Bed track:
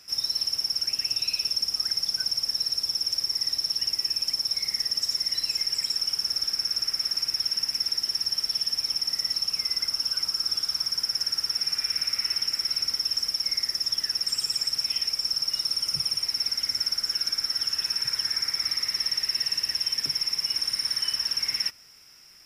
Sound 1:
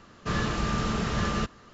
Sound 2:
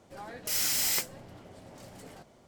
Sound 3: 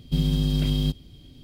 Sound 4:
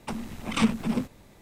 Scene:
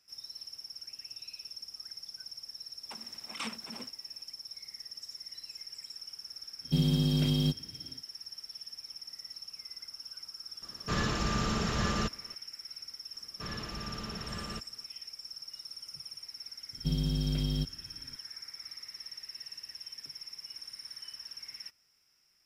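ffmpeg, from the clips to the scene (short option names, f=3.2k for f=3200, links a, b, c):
-filter_complex "[3:a]asplit=2[a][b];[1:a]asplit=2[c][d];[0:a]volume=-18dB[e];[4:a]highpass=f=1k:p=1[f];[a]highpass=110[g];[c]highshelf=f=5.7k:g=7.5[h];[d]equalizer=f=2.8k:w=1.4:g=3[i];[f]atrim=end=1.41,asetpts=PTS-STARTPTS,volume=-8.5dB,afade=t=in:d=0.004:c=hsin,afade=t=out:st=1.406:d=0.004:c=hsin,adelay=2830[j];[g]atrim=end=1.43,asetpts=PTS-STARTPTS,volume=-2dB,afade=t=in:d=0.1,afade=t=out:st=1.33:d=0.1,adelay=6600[k];[h]atrim=end=1.73,asetpts=PTS-STARTPTS,volume=-3.5dB,afade=t=in:d=0.004:c=hsin,afade=t=out:st=1.726:d=0.004:c=hsin,adelay=10620[l];[i]atrim=end=1.73,asetpts=PTS-STARTPTS,volume=-13.5dB,afade=t=in:d=0.004:c=hsin,afade=t=out:st=1.726:d=0.004:c=hsin,adelay=13140[m];[b]atrim=end=1.43,asetpts=PTS-STARTPTS,volume=-8dB,afade=t=in:d=0.004:c=hsin,afade=t=out:st=1.426:d=0.004:c=hsin,adelay=16730[n];[e][j][k][l][m][n]amix=inputs=6:normalize=0"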